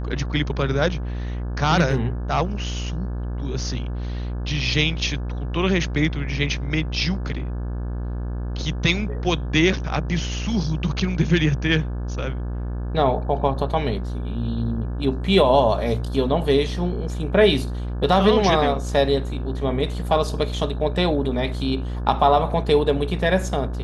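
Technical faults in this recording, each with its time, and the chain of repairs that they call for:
buzz 60 Hz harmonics 29 -27 dBFS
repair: de-hum 60 Hz, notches 29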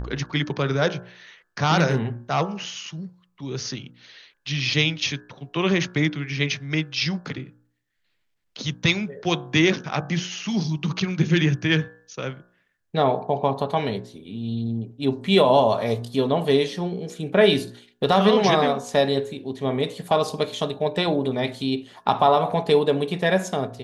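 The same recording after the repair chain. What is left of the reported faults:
nothing left

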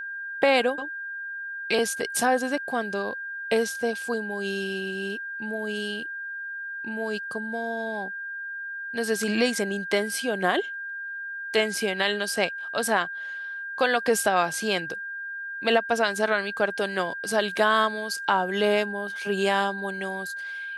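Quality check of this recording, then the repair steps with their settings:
whine 1.6 kHz -32 dBFS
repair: band-stop 1.6 kHz, Q 30

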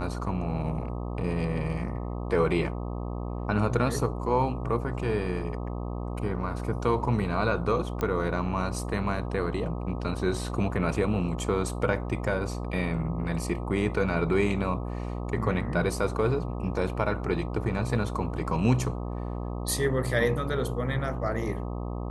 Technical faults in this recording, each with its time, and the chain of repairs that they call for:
buzz 60 Hz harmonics 21 -33 dBFS
8.01 s: pop -16 dBFS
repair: de-click; de-hum 60 Hz, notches 21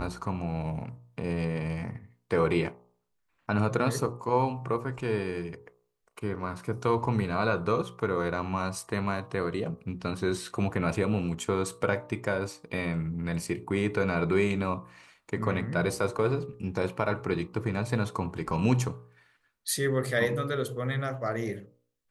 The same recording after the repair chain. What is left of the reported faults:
8.01 s: pop

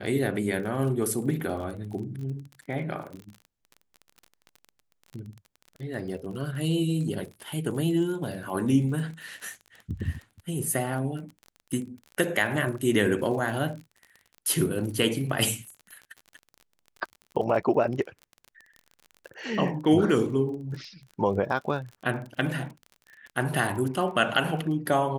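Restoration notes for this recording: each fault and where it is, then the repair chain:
crackle 32 per s -36 dBFS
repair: de-click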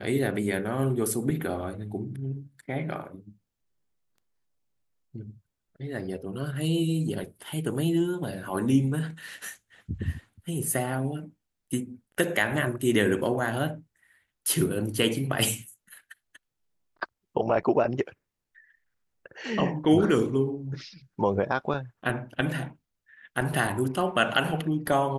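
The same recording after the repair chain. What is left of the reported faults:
nothing left

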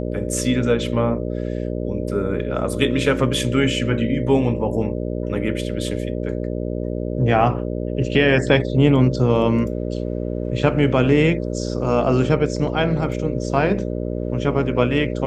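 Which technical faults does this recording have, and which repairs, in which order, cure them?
buzz 60 Hz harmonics 10 -25 dBFS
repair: de-hum 60 Hz, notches 10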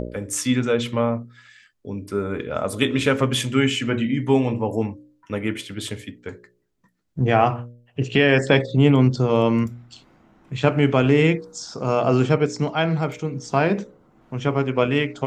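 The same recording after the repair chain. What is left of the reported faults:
nothing left

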